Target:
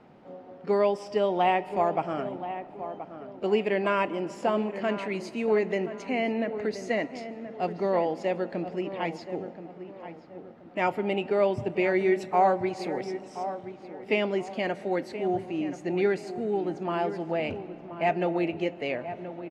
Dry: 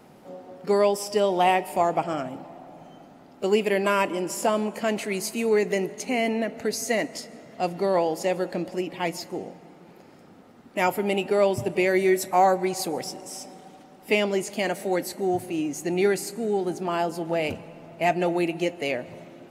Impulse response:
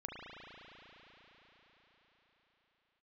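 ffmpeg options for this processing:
-filter_complex "[0:a]lowpass=3100,asplit=2[s0][s1];[s1]adelay=1027,lowpass=f=1700:p=1,volume=0.282,asplit=2[s2][s3];[s3]adelay=1027,lowpass=f=1700:p=1,volume=0.37,asplit=2[s4][s5];[s5]adelay=1027,lowpass=f=1700:p=1,volume=0.37,asplit=2[s6][s7];[s7]adelay=1027,lowpass=f=1700:p=1,volume=0.37[s8];[s0][s2][s4][s6][s8]amix=inputs=5:normalize=0,volume=0.708"

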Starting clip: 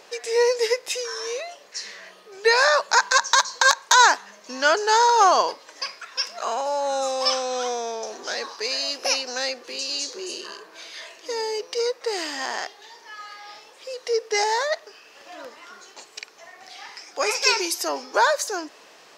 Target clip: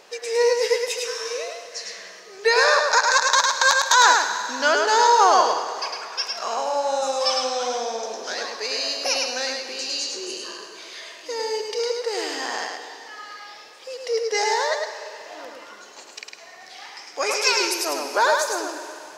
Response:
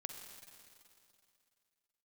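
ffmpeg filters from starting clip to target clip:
-filter_complex "[0:a]asplit=2[s0][s1];[1:a]atrim=start_sample=2205,adelay=105[s2];[s1][s2]afir=irnorm=-1:irlink=0,volume=1.06[s3];[s0][s3]amix=inputs=2:normalize=0,volume=0.891"

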